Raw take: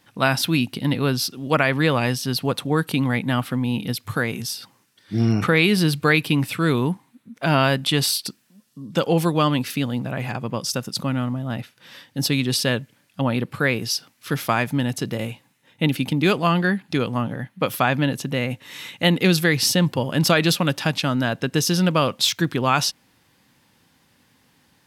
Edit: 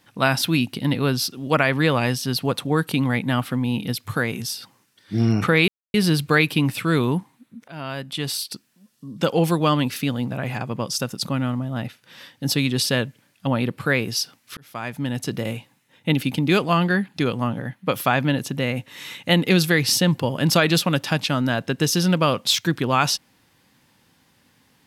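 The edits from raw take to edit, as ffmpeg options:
ffmpeg -i in.wav -filter_complex "[0:a]asplit=4[link_01][link_02][link_03][link_04];[link_01]atrim=end=5.68,asetpts=PTS-STARTPTS,afade=type=out:start_time=5.676:duration=0.004:curve=hsin,apad=pad_dur=0.26[link_05];[link_02]atrim=start=5.68:end=7.42,asetpts=PTS-STARTPTS,afade=type=in:duration=0.004:curve=hsin,afade=type=out:start_time=1.736:duration=0.004:curve=hsin:silence=0.0944061[link_06];[link_03]atrim=start=7.42:end=14.31,asetpts=PTS-STARTPTS,afade=type=in:duration=1.4:silence=0.0944061,afade=type=out:start_time=6.886:duration=0.004:curve=hsin[link_07];[link_04]atrim=start=14.31,asetpts=PTS-STARTPTS,afade=type=in:duration=0.77[link_08];[link_05][link_06][link_07][link_08]concat=n=4:v=0:a=1" out.wav

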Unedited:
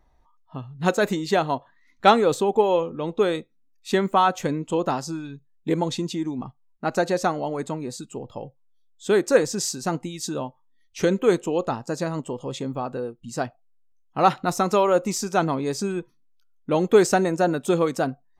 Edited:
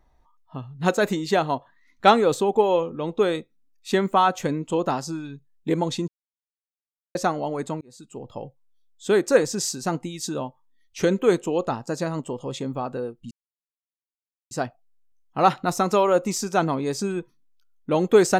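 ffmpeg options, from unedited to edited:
ffmpeg -i in.wav -filter_complex "[0:a]asplit=5[link_01][link_02][link_03][link_04][link_05];[link_01]atrim=end=6.08,asetpts=PTS-STARTPTS,afade=type=out:start_time=6.076:duration=0.004:curve=hsin[link_06];[link_02]atrim=start=6.08:end=7.15,asetpts=PTS-STARTPTS,volume=0[link_07];[link_03]atrim=start=7.15:end=7.81,asetpts=PTS-STARTPTS,afade=type=in:duration=0.004:curve=hsin,afade=type=out:start_time=0.656:duration=0.004:curve=hsin[link_08];[link_04]atrim=start=7.81:end=13.31,asetpts=PTS-STARTPTS,afade=type=in:duration=0.53,afade=type=out:start_time=5.496:duration=0.004:curve=hsin,apad=pad_dur=1.2[link_09];[link_05]atrim=start=13.31,asetpts=PTS-STARTPTS,afade=type=in:duration=0.004:curve=hsin[link_10];[link_06][link_07][link_08][link_09][link_10]concat=n=5:v=0:a=1" out.wav

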